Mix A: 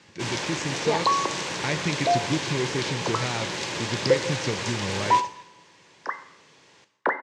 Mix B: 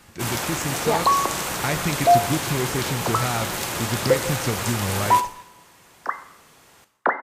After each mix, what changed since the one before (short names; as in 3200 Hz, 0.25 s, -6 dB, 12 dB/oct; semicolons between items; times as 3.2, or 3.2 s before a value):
second sound: add air absorption 56 m; master: remove speaker cabinet 140–6300 Hz, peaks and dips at 230 Hz -5 dB, 720 Hz -8 dB, 1300 Hz -9 dB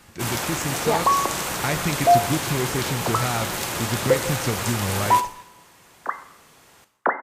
second sound: add running mean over 8 samples